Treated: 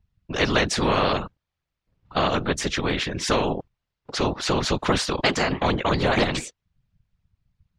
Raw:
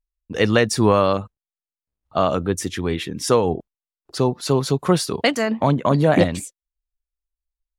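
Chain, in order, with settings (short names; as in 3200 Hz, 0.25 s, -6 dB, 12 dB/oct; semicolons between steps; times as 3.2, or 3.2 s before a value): air absorption 180 m; whisperiser; spectral compressor 2:1; gain -4 dB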